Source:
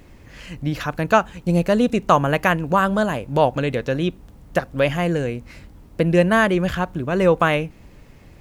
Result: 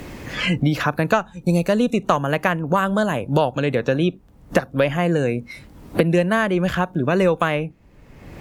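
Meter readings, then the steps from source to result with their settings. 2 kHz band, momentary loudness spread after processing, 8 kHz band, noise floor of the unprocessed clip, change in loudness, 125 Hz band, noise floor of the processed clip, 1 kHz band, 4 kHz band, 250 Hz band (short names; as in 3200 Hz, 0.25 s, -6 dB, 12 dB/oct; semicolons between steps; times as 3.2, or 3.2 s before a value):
-0.5 dB, 6 LU, +0.5 dB, -47 dBFS, -0.5 dB, +1.0 dB, -49 dBFS, -2.0 dB, +1.5 dB, +0.5 dB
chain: spectral noise reduction 15 dB; added harmonics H 2 -22 dB, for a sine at -1 dBFS; three-band squash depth 100%; gain -1 dB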